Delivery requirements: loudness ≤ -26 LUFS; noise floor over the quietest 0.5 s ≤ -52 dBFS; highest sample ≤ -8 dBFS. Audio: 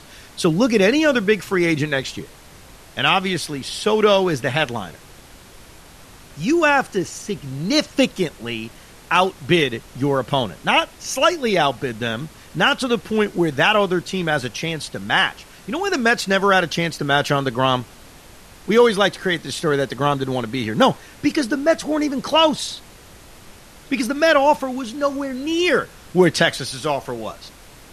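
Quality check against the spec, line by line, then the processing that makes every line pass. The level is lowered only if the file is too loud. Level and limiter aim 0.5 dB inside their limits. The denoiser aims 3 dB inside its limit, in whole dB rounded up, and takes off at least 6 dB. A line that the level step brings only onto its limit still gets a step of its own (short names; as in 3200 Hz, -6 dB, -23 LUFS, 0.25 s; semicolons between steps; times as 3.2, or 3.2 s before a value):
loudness -19.5 LUFS: fail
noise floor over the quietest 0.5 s -44 dBFS: fail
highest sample -4.0 dBFS: fail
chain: denoiser 6 dB, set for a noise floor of -44 dBFS; gain -7 dB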